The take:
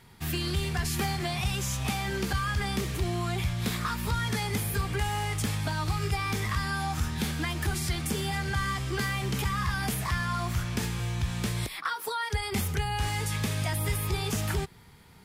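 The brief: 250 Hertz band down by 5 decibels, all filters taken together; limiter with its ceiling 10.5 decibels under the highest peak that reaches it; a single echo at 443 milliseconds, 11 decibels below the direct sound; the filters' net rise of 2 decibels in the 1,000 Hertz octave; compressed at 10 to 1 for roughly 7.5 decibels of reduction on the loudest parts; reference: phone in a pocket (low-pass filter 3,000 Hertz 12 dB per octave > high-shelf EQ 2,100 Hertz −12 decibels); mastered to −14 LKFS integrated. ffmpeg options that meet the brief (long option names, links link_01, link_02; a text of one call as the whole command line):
ffmpeg -i in.wav -af "equalizer=frequency=250:width_type=o:gain=-8.5,equalizer=frequency=1000:width_type=o:gain=6,acompressor=threshold=-31dB:ratio=10,alimiter=level_in=5.5dB:limit=-24dB:level=0:latency=1,volume=-5.5dB,lowpass=3000,highshelf=frequency=2100:gain=-12,aecho=1:1:443:0.282,volume=26dB" out.wav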